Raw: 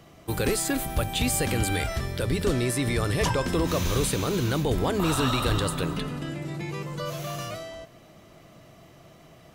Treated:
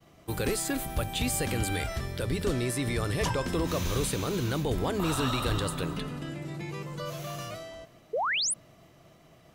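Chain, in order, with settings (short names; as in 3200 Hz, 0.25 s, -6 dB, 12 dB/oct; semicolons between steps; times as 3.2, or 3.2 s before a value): expander -49 dBFS; painted sound rise, 8.13–8.54, 410–11000 Hz -24 dBFS; gain -4 dB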